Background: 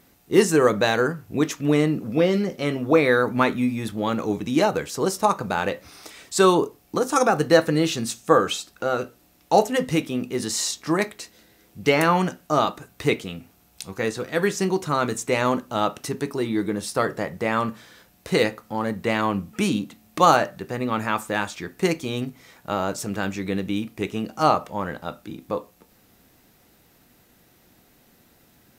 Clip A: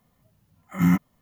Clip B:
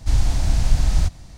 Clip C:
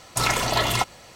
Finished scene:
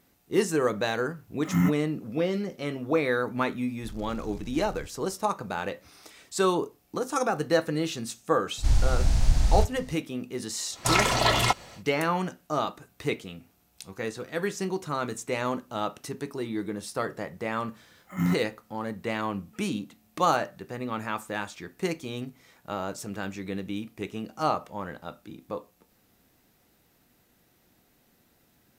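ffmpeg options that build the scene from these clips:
-filter_complex "[1:a]asplit=2[s0][s1];[2:a]asplit=2[s2][s3];[0:a]volume=0.422[s4];[s2]asoftclip=type=tanh:threshold=0.0944[s5];[3:a]highshelf=f=12000:g=-10[s6];[s0]atrim=end=1.21,asetpts=PTS-STARTPTS,volume=0.631,afade=t=in:d=0.004:c=hsin,afade=t=out:st=1.206:d=0.004:c=hsin,adelay=730[s7];[s5]atrim=end=1.37,asetpts=PTS-STARTPTS,volume=0.133,afade=t=in:d=0.004:c=hsin,afade=t=out:st=1.366:d=0.004:c=hsin,adelay=3780[s8];[s3]atrim=end=1.37,asetpts=PTS-STARTPTS,volume=0.631,afade=t=in:d=0.004:c=hsin,afade=t=out:st=1.366:d=0.004:c=hsin,adelay=8570[s9];[s6]atrim=end=1.15,asetpts=PTS-STARTPTS,afade=t=in:d=0.1,afade=t=out:st=1.05:d=0.1,adelay=10690[s10];[s1]atrim=end=1.21,asetpts=PTS-STARTPTS,volume=0.473,afade=t=in:d=0.004:c=hsin,afade=t=out:st=1.206:d=0.004:c=hsin,adelay=17380[s11];[s4][s7][s8][s9][s10][s11]amix=inputs=6:normalize=0"

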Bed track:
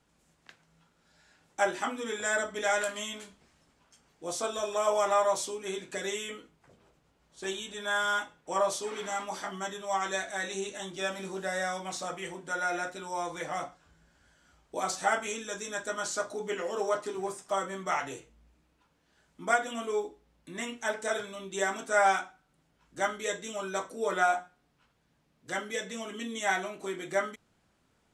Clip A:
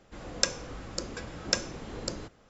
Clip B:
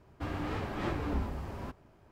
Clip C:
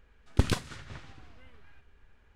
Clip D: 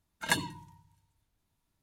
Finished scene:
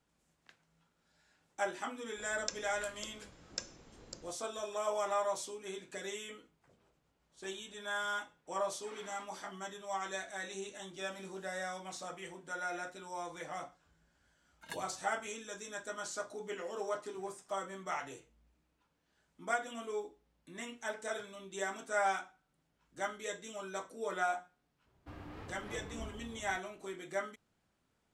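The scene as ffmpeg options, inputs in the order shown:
-filter_complex "[0:a]volume=0.398[s0];[1:a]crystalizer=i=1.5:c=0,atrim=end=2.49,asetpts=PTS-STARTPTS,volume=0.133,afade=t=in:d=0.004:c=hsin,afade=t=out:st=2.486:d=0.004:c=hsin,adelay=2050[s1];[4:a]atrim=end=1.82,asetpts=PTS-STARTPTS,volume=0.133,afade=t=in:d=0.004:c=hsin,afade=t=out:st=1.816:d=0.004:c=hsin,adelay=14400[s2];[2:a]atrim=end=2.11,asetpts=PTS-STARTPTS,volume=0.224,afade=t=in:d=0.004:c=hsin,afade=t=out:st=2.106:d=0.004:c=hsin,adelay=24860[s3];[s0][s1][s2][s3]amix=inputs=4:normalize=0"

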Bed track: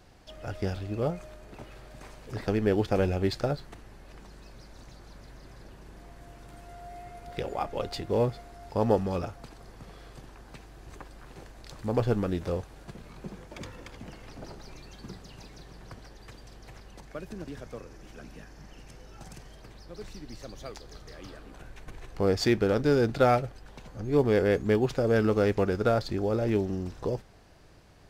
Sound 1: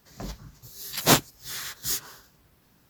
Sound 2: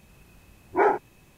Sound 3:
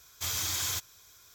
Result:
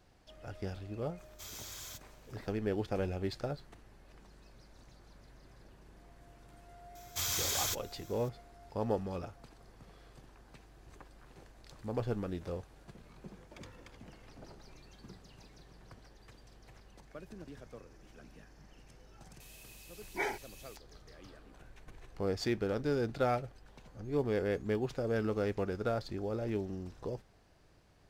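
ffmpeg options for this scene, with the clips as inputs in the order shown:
-filter_complex "[3:a]asplit=2[s0][s1];[0:a]volume=0.355[s2];[2:a]aexciter=amount=7.6:drive=8.5:freq=2000[s3];[s0]atrim=end=1.34,asetpts=PTS-STARTPTS,volume=0.178,afade=t=in:d=0.004:c=hsin,afade=t=out:st=1.336:d=0.004:c=hsin,adelay=1180[s4];[s1]atrim=end=1.34,asetpts=PTS-STARTPTS,volume=0.794,afade=t=in:d=0.004:c=hsin,afade=t=out:st=1.336:d=0.004:c=hsin,adelay=6950[s5];[s3]atrim=end=1.37,asetpts=PTS-STARTPTS,volume=0.141,afade=t=in:d=0.004:c=hsin,afade=t=out:st=1.366:d=0.004:c=hsin,adelay=855540S[s6];[s2][s4][s5][s6]amix=inputs=4:normalize=0"

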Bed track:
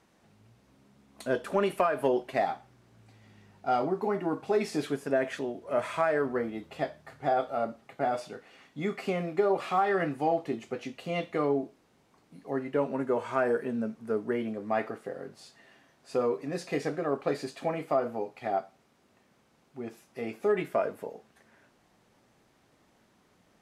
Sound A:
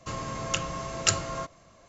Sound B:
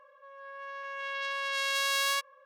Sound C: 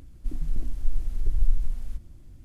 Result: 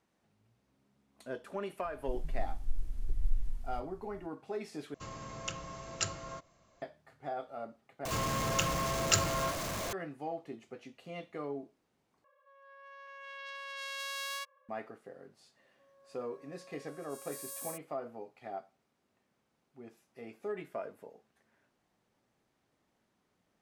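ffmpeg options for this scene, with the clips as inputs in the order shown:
-filter_complex "[1:a]asplit=2[s0][s1];[2:a]asplit=2[s2][s3];[0:a]volume=0.251[s4];[s1]aeval=exprs='val(0)+0.5*0.0473*sgn(val(0))':c=same[s5];[s3]firequalizer=gain_entry='entry(430,0);entry(680,-9);entry(2300,-30);entry(8700,7)':delay=0.05:min_phase=1[s6];[s4]asplit=4[s7][s8][s9][s10];[s7]atrim=end=4.944[s11];[s0]atrim=end=1.88,asetpts=PTS-STARTPTS,volume=0.299[s12];[s8]atrim=start=6.816:end=8.054[s13];[s5]atrim=end=1.88,asetpts=PTS-STARTPTS,volume=0.562[s14];[s9]atrim=start=9.926:end=12.244[s15];[s2]atrim=end=2.45,asetpts=PTS-STARTPTS,volume=0.299[s16];[s10]atrim=start=14.686[s17];[3:a]atrim=end=2.44,asetpts=PTS-STARTPTS,volume=0.355,afade=t=in:d=0.004:c=hsin,afade=t=out:st=2.436:d=0.004:c=hsin,adelay=1830[s18];[s6]atrim=end=2.45,asetpts=PTS-STARTPTS,volume=0.376,afade=t=in:d=0.004:c=hsin,afade=t=out:st=2.446:d=0.004:c=hsin,adelay=15570[s19];[s11][s12]acrossfade=d=0.004:c1=hsin:c2=hsin[s20];[s20][s13]acrossfade=d=0.004:c1=hsin:c2=hsin[s21];[s21][s14]acrossfade=d=0.004:c1=hsin:c2=hsin[s22];[s22][s15]acrossfade=d=0.004:c1=hsin:c2=hsin[s23];[s23][s16]acrossfade=d=0.004:c1=hsin:c2=hsin[s24];[s24][s17]acrossfade=d=0.004:c1=hsin:c2=hsin[s25];[s25][s18][s19]amix=inputs=3:normalize=0"

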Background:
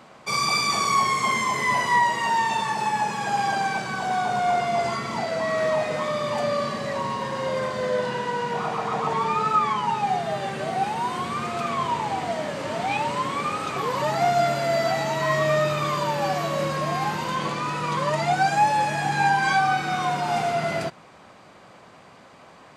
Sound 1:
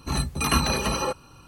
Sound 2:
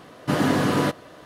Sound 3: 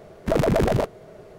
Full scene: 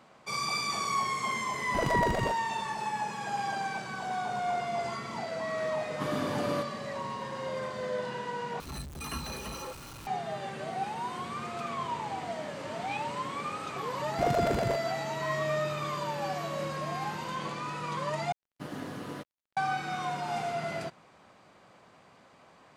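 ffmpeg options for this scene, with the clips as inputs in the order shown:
-filter_complex "[3:a]asplit=2[s0][s1];[2:a]asplit=2[s2][s3];[0:a]volume=0.355[s4];[s2]bandreject=f=1900:w=12[s5];[1:a]aeval=exprs='val(0)+0.5*0.0794*sgn(val(0))':c=same[s6];[s1]highpass=50[s7];[s3]aeval=exprs='sgn(val(0))*max(abs(val(0))-0.0141,0)':c=same[s8];[s4]asplit=3[s9][s10][s11];[s9]atrim=end=8.604[s12];[s6]atrim=end=1.47,asetpts=PTS-STARTPTS,volume=0.126[s13];[s10]atrim=start=10.066:end=18.324[s14];[s8]atrim=end=1.25,asetpts=PTS-STARTPTS,volume=0.133[s15];[s11]atrim=start=19.566[s16];[s0]atrim=end=1.38,asetpts=PTS-STARTPTS,volume=0.316,afade=t=in:d=0.004:c=hsin,afade=t=out:st=1.376:d=0.004:c=hsin,adelay=1470[s17];[s5]atrim=end=1.25,asetpts=PTS-STARTPTS,volume=0.224,afade=t=in:d=0.004:c=hsin,afade=t=out:st=1.246:d=0.004:c=hsin,adelay=5720[s18];[s7]atrim=end=1.38,asetpts=PTS-STARTPTS,volume=0.335,afade=t=in:d=0.004:c=hsin,afade=t=out:st=1.376:d=0.004:c=hsin,adelay=13910[s19];[s12][s13]acrossfade=d=0.004:c1=hsin:c2=hsin[s20];[s20][s14]acrossfade=d=0.004:c1=hsin:c2=hsin[s21];[s21][s15]acrossfade=d=0.004:c1=hsin:c2=hsin[s22];[s22][s16]acrossfade=d=0.004:c1=hsin:c2=hsin[s23];[s23][s17][s18][s19]amix=inputs=4:normalize=0"

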